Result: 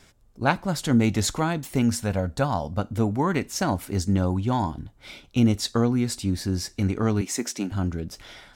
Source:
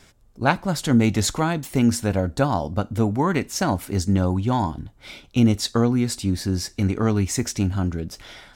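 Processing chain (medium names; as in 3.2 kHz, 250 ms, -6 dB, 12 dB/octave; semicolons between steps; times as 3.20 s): 1.82–2.79 s: peaking EQ 330 Hz -8 dB 0.49 oct; 7.21–7.72 s: high-pass 210 Hz 24 dB/octave; trim -2.5 dB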